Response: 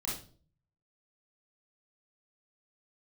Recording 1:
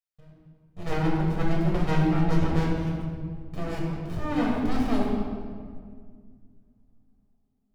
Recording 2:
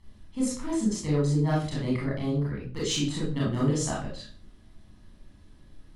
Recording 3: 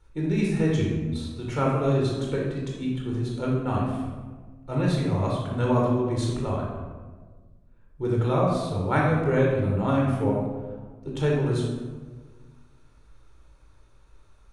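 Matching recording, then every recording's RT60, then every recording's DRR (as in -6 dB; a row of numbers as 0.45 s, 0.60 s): 2; 2.0 s, no single decay rate, 1.5 s; -4.0 dB, -6.0 dB, -3.0 dB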